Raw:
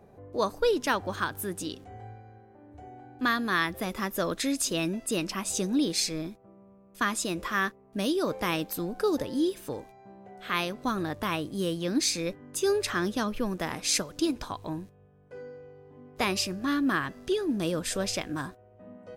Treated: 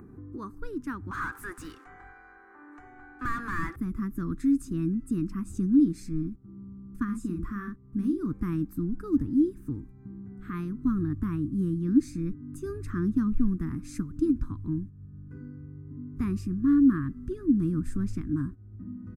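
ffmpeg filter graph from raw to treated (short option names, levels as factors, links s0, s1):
-filter_complex "[0:a]asettb=1/sr,asplit=3[s0][s1][s2];[s0]atrim=end=1.114[s3];[s1]atrim=start=1.11:end=3.76,asetpts=PTS-STARTPTS,afade=t=in:d=0.004:c=qsin,afade=t=out:st=2.646:d=0.004:c=qsin,highpass=f=570:w=0.5412,highpass=f=570:w=1.3066,highshelf=f=12000:g=-8,asplit=2[s4][s5];[s5]highpass=f=720:p=1,volume=39.8,asoftclip=type=tanh:threshold=0.211[s6];[s4][s6]amix=inputs=2:normalize=0,lowpass=f=3300:p=1,volume=0.501[s7];[s2]atrim=start=3.756[s8];[s3][s7]acrossfade=d=0.004:c1=hsin:c2=qsin[s9];[s9][s8]acrossfade=d=0.004:c1=qsin:c2=hsin,asettb=1/sr,asplit=3[s10][s11][s12];[s10]atrim=end=7.044[s13];[s11]atrim=start=7.04:end=8.26,asetpts=PTS-STARTPTS,afade=t=in:d=0.004:c=qsin,afade=t=out:st=1.216:d=0.004:c=qsin,asplit=2[s14][s15];[s15]adelay=44,volume=0.562[s16];[s14][s16]amix=inputs=2:normalize=0,atrim=end_sample=53802,acompressor=threshold=0.0282:ratio=1.5:attack=3.2:release=140:knee=1:detection=peak[s17];[s12]atrim=start=8.256[s18];[s13][s17]acrossfade=d=0.004:c1=hsin:c2=qsin[s19];[s19][s18]acrossfade=d=0.004:c1=qsin:c2=hsin,asubboost=boost=10:cutoff=160,acompressor=mode=upward:threshold=0.0355:ratio=2.5,firequalizer=gain_entry='entry(190,0);entry(290,9);entry(580,-26);entry(1200,-1);entry(3100,-24);entry(8200,-12)':delay=0.05:min_phase=1,volume=0.501"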